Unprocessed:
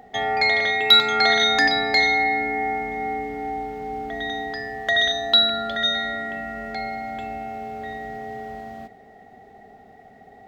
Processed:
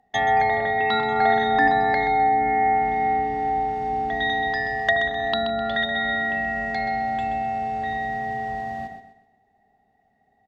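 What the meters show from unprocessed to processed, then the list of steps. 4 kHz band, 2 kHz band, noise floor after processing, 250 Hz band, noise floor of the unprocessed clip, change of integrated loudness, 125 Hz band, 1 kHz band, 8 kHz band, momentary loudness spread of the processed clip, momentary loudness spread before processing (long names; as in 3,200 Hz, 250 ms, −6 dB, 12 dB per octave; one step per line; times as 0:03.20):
−13.0 dB, −1.5 dB, −66 dBFS, +1.5 dB, −49 dBFS, −2.0 dB, +5.5 dB, +5.0 dB, below −10 dB, 8 LU, 17 LU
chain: noise gate with hold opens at −35 dBFS
treble cut that deepens with the level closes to 1,200 Hz, closed at −18 dBFS
comb filter 1.1 ms, depth 41%
on a send: repeating echo 128 ms, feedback 35%, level −10 dB
on the sum: level +2 dB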